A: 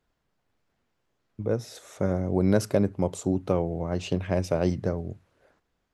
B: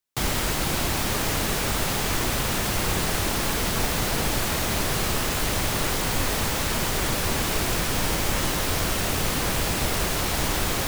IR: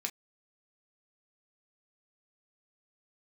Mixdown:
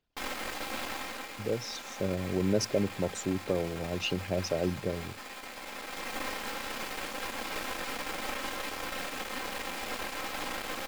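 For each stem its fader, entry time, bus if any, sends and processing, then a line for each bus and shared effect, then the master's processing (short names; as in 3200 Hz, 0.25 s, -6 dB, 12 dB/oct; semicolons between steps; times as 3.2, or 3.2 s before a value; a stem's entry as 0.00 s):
-4.5 dB, 0.00 s, no send, formant sharpening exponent 1.5; band shelf 3800 Hz +10.5 dB
-7.0 dB, 0.00 s, send -8.5 dB, tone controls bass -11 dB, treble -11 dB; comb 3.8 ms, depth 70%; half-wave rectifier; auto duck -11 dB, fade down 0.45 s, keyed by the first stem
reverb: on, pre-delay 3 ms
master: low shelf 170 Hz -4 dB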